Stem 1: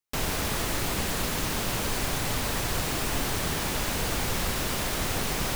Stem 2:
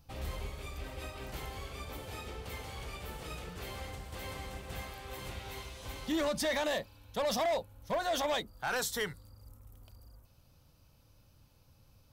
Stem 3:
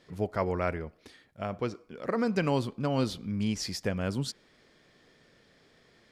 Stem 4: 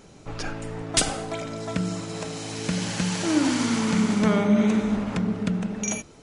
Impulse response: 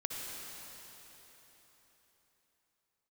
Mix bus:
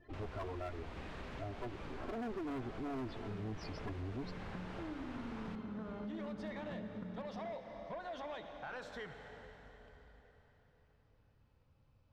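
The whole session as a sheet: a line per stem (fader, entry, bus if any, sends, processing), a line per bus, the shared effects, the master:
−14.0 dB, 0.00 s, no send, no processing
−10.5 dB, 0.00 s, send −5.5 dB, no processing
+2.5 dB, 0.00 s, no send, lower of the sound and its delayed copy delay 2.9 ms; gate on every frequency bin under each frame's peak −10 dB strong
−14.5 dB, 1.55 s, send −12.5 dB, Butterworth low-pass 1,700 Hz 48 dB per octave; downward compressor, threshold −22 dBFS, peak gain reduction 7.5 dB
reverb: on, RT60 4.1 s, pre-delay 53 ms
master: low-pass filter 2,500 Hz 12 dB per octave; gain into a clipping stage and back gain 30 dB; downward compressor 2.5 to 1, threshold −44 dBFS, peak gain reduction 8.5 dB

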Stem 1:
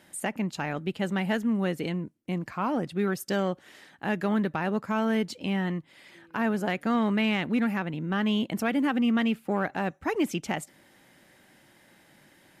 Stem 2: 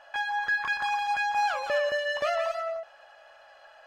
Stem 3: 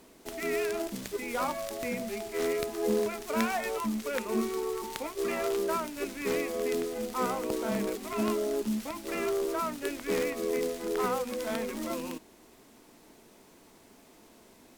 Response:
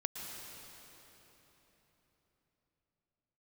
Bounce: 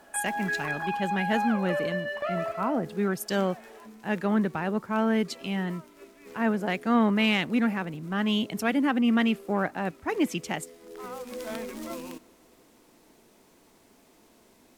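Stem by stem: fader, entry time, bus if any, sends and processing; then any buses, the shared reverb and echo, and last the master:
+0.5 dB, 0.00 s, no send, multiband upward and downward expander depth 100%
−3.0 dB, 0.00 s, no send, low-pass filter 2,400 Hz
−3.0 dB, 0.00 s, send −22.5 dB, automatic ducking −18 dB, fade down 1.15 s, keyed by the first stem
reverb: on, RT60 4.0 s, pre-delay 105 ms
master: no processing

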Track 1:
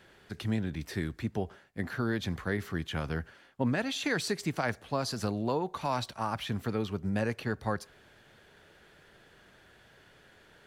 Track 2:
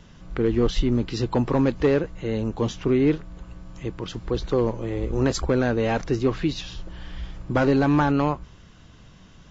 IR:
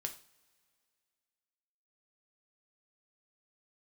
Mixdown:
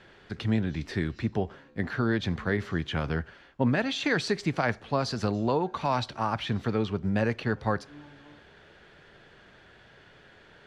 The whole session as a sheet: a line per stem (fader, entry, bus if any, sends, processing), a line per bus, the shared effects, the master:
+3.0 dB, 0.00 s, send −13.5 dB, low-pass filter 4,900 Hz 12 dB per octave
−11.5 dB, 0.00 s, send −11 dB, comb filter 3.7 ms, depth 44%; brickwall limiter −19 dBFS, peak gain reduction 10 dB; tuned comb filter 73 Hz, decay 0.46 s, harmonics all, mix 100%; automatic ducking −11 dB, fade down 1.70 s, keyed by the first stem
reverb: on, pre-delay 3 ms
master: no processing

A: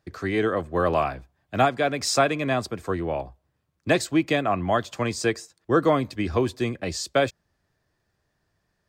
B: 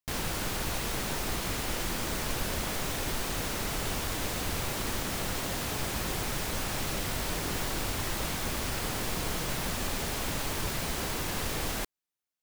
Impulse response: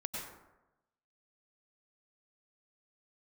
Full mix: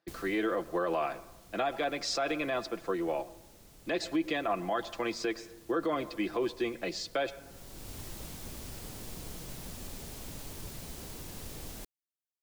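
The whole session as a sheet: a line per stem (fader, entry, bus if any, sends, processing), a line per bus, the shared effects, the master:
−5.5 dB, 0.00 s, send −19 dB, Chebyshev band-pass filter 310–4,400 Hz, order 2; comb filter 5.9 ms, depth 51%
−9.0 dB, 0.00 s, no send, parametric band 1,500 Hz −9 dB 2.6 octaves; automatic ducking −13 dB, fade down 0.45 s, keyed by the first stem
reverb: on, RT60 0.95 s, pre-delay 87 ms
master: brickwall limiter −22 dBFS, peak gain reduction 10.5 dB

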